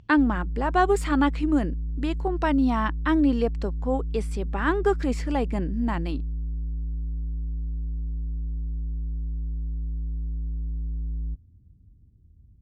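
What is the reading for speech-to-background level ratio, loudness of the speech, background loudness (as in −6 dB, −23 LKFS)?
7.0 dB, −25.5 LKFS, −32.5 LKFS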